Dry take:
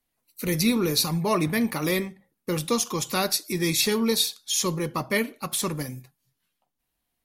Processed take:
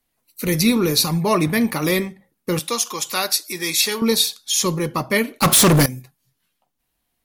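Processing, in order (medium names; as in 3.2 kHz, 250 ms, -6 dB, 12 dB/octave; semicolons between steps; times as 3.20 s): 2.59–4.02 s: high-pass 850 Hz 6 dB/octave; 5.39–5.86 s: waveshaping leveller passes 5; trim +5.5 dB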